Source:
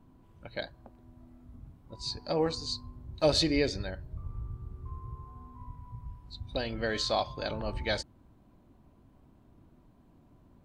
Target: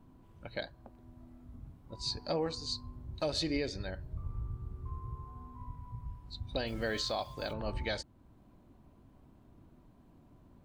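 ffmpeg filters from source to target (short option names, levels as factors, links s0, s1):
-filter_complex "[0:a]asplit=3[s0][s1][s2];[s0]afade=t=out:st=6.66:d=0.02[s3];[s1]acrusher=bits=8:mix=0:aa=0.5,afade=t=in:st=6.66:d=0.02,afade=t=out:st=7.52:d=0.02[s4];[s2]afade=t=in:st=7.52:d=0.02[s5];[s3][s4][s5]amix=inputs=3:normalize=0,alimiter=limit=0.0708:level=0:latency=1:release=461"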